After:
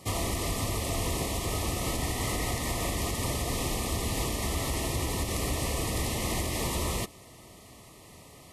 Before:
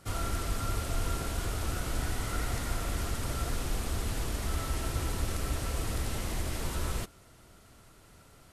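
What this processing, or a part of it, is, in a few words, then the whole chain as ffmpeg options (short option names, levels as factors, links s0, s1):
PA system with an anti-feedback notch: -af "highpass=f=110:p=1,asuperstop=centerf=1500:order=20:qfactor=3.2,alimiter=level_in=1.58:limit=0.0631:level=0:latency=1:release=139,volume=0.631,volume=2.51"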